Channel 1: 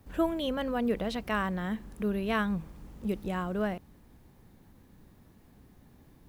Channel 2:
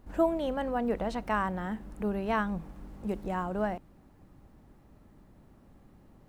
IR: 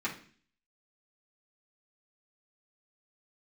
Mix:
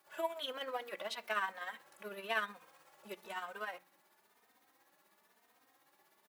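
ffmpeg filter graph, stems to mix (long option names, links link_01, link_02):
-filter_complex "[0:a]tremolo=f=16:d=0.61,volume=2.5dB,asplit=2[link_01][link_02];[link_02]volume=-17.5dB[link_03];[1:a]acompressor=threshold=-35dB:ratio=6,asoftclip=type=hard:threshold=-39.5dB,adelay=2,volume=-2dB[link_04];[2:a]atrim=start_sample=2205[link_05];[link_03][link_05]afir=irnorm=-1:irlink=0[link_06];[link_01][link_04][link_06]amix=inputs=3:normalize=0,highpass=860,asplit=2[link_07][link_08];[link_08]adelay=3.1,afreqshift=1[link_09];[link_07][link_09]amix=inputs=2:normalize=1"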